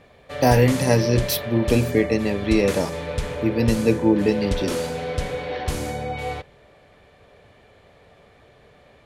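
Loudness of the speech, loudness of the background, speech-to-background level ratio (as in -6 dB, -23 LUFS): -21.0 LUFS, -28.5 LUFS, 7.5 dB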